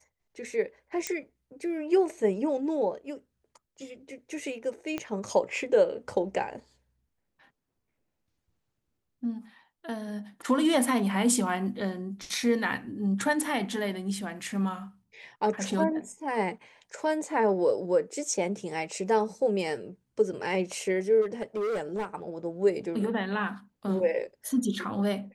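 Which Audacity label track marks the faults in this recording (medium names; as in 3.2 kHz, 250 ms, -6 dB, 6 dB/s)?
1.070000	1.070000	pop -15 dBFS
4.980000	4.980000	pop -18 dBFS
21.210000	22.050000	clipped -27 dBFS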